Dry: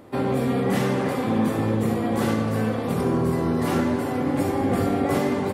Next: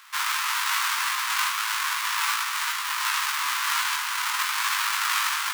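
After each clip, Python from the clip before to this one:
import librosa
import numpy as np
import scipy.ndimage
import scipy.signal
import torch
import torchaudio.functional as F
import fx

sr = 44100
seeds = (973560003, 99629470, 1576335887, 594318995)

y = fx.halfwave_hold(x, sr)
y = scipy.signal.sosfilt(scipy.signal.butter(12, 970.0, 'highpass', fs=sr, output='sos'), y)
y = fx.doubler(y, sr, ms=19.0, db=-4.0)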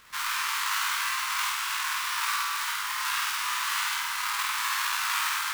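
y = fx.dmg_noise_colour(x, sr, seeds[0], colour='pink', level_db=-60.0)
y = fx.room_flutter(y, sr, wall_m=8.6, rt60_s=0.83)
y = F.gain(torch.from_numpy(y), -5.5).numpy()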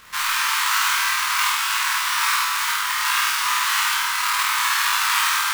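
y = fx.doubler(x, sr, ms=28.0, db=-5.0)
y = F.gain(torch.from_numpy(y), 7.0).numpy()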